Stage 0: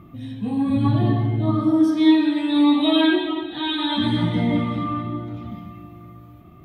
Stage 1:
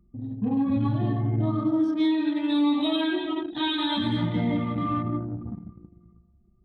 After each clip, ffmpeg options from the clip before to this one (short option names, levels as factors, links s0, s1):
-af "anlmdn=39.8,alimiter=limit=0.15:level=0:latency=1:release=466"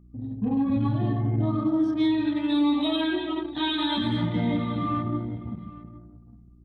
-af "aeval=exprs='val(0)+0.00282*(sin(2*PI*60*n/s)+sin(2*PI*2*60*n/s)/2+sin(2*PI*3*60*n/s)/3+sin(2*PI*4*60*n/s)/4+sin(2*PI*5*60*n/s)/5)':c=same,aecho=1:1:809:0.112"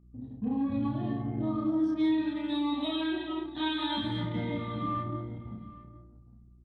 -filter_complex "[0:a]aresample=22050,aresample=44100,asplit=2[s0][s1];[s1]adelay=32,volume=0.631[s2];[s0][s2]amix=inputs=2:normalize=0,volume=0.447"